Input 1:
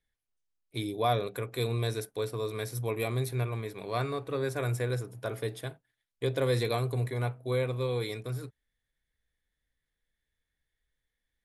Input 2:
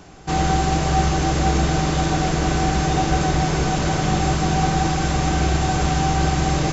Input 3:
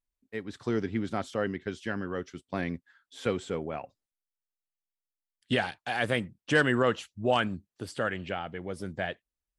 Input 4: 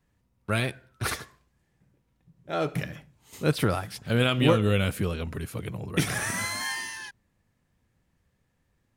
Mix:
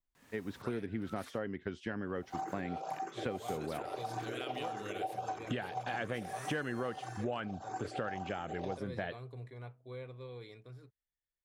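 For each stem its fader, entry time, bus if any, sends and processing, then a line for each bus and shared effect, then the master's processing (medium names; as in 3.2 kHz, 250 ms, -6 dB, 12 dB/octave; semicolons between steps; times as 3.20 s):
-16.0 dB, 2.40 s, no send, low-pass 5 kHz 12 dB/octave
-5.0 dB, 2.05 s, no send, resonances exaggerated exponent 2; high-pass 430 Hz 24 dB/octave; barber-pole phaser +1.7 Hz
+0.5 dB, 0.00 s, no send, low-pass 2.4 kHz 6 dB/octave; vibrato 1.6 Hz 53 cents
-16.5 dB, 0.15 s, no send, high-pass 610 Hz 6 dB/octave; swell ahead of each attack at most 47 dB/s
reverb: none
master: compression 6:1, threshold -34 dBFS, peak gain reduction 14.5 dB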